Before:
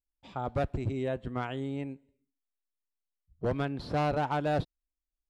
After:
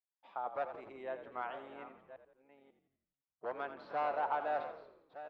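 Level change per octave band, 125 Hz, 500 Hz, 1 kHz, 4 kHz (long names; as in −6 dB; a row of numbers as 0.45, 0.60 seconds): −32.5, −7.0, −2.5, −13.0 decibels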